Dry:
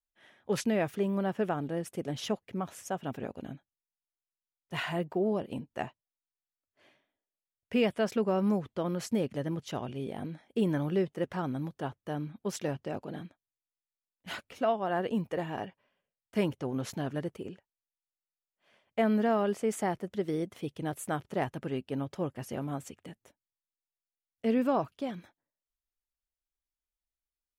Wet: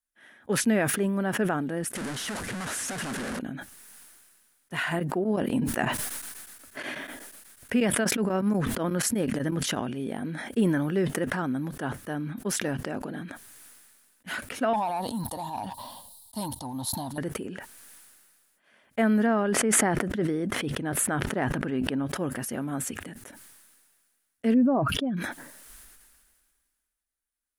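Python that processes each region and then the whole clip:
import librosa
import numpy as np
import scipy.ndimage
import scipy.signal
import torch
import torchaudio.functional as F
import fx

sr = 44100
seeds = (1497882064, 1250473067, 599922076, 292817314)

y = fx.chain(x, sr, fx.clip_1bit(),
    fx.lowpass(hz=8800.0, slope=12), at=(1.95, 3.39))
y = fx.chain(y, sr, fx.tremolo_shape(shape='triangle', hz=8.2, depth_pct=100),
    fx.env_flatten(amount_pct=70), at=(4.91, 9.8))
y = fx.chain(y, sr, fx.curve_eq(hz=(100.0, 160.0, 290.0, 410.0, 920.0, 1500.0, 2500.0, 4000.0, 6100.0, 9900.0), db=(0, -12, -11, -24, 6, -30, -25, 9, -7, 4)),
    fx.leveller(passes=1), at=(14.73, 17.18))
y = fx.chain(y, sr, fx.lowpass(hz=2900.0, slope=6),
    fx.sustainer(db_per_s=26.0), at=(19.26, 22.06))
y = fx.chain(y, sr, fx.spec_expand(power=1.7),
    fx.sustainer(db_per_s=55.0), at=(24.54, 25.17))
y = fx.graphic_eq_15(y, sr, hz=(100, 250, 1600, 10000), db=(-3, 7, 9, 12))
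y = fx.sustainer(y, sr, db_per_s=31.0)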